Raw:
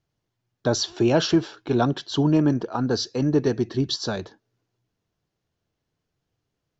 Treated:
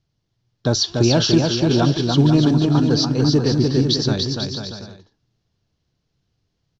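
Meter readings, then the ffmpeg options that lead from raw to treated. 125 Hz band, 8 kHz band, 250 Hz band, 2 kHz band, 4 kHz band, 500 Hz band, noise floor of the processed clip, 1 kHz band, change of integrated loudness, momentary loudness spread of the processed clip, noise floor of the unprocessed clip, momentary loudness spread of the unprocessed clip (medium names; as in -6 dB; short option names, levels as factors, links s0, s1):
+9.0 dB, no reading, +5.5 dB, +3.0 dB, +8.5 dB, +3.0 dB, -74 dBFS, +2.5 dB, +6.0 dB, 11 LU, -81 dBFS, 7 LU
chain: -filter_complex "[0:a]acrusher=bits=8:mode=log:mix=0:aa=0.000001,lowpass=f=5100:w=0.5412,lowpass=f=5100:w=1.3066,bass=f=250:g=8,treble=f=4000:g=14,asplit=2[s0][s1];[s1]aecho=0:1:290|493|635.1|734.6|804.2:0.631|0.398|0.251|0.158|0.1[s2];[s0][s2]amix=inputs=2:normalize=0"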